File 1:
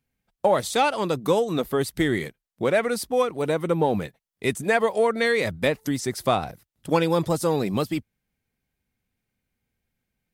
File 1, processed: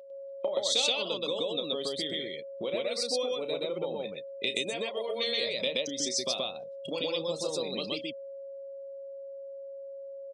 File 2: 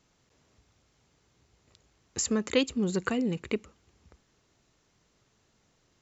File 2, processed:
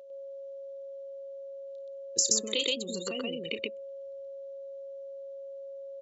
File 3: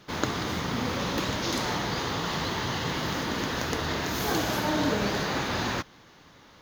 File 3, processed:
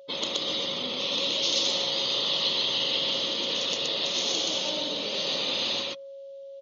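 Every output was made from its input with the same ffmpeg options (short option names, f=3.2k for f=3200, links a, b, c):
-af "afftdn=nr=31:nf=-38,acompressor=threshold=-35dB:ratio=20,aeval=exprs='val(0)+0.00224*sin(2*PI*550*n/s)':c=same,highpass=240,equalizer=f=550:t=q:w=4:g=9,equalizer=f=810:t=q:w=4:g=-4,equalizer=f=1.6k:t=q:w=4:g=-9,equalizer=f=2.2k:t=q:w=4:g=-5,equalizer=f=3.2k:t=q:w=4:g=3,equalizer=f=4.9k:t=q:w=4:g=-6,lowpass=f=5.6k:w=0.5412,lowpass=f=5.6k:w=1.3066,aecho=1:1:32.07|125.4:0.316|1,aexciter=amount=9.9:drive=3.6:freq=2.4k"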